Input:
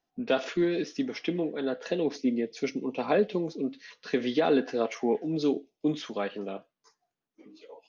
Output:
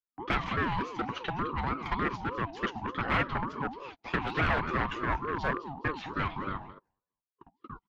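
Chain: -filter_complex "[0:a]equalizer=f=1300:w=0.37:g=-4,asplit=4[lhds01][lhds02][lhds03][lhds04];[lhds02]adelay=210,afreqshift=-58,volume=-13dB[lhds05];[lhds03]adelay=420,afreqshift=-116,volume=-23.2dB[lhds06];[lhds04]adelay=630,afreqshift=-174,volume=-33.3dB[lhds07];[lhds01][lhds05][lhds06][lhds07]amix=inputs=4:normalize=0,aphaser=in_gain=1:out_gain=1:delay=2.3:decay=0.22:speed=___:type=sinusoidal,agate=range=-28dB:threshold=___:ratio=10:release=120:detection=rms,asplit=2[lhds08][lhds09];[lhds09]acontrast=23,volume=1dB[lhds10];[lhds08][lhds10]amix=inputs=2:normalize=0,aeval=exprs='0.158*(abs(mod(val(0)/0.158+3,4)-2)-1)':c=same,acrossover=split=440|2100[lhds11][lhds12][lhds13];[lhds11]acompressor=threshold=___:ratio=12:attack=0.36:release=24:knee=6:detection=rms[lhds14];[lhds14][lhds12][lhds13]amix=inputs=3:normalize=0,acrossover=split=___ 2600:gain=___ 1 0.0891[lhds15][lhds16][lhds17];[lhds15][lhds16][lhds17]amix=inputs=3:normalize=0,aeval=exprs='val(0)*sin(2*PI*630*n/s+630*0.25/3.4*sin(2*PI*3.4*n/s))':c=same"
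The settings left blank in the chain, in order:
1.9, -48dB, -35dB, 190, 0.224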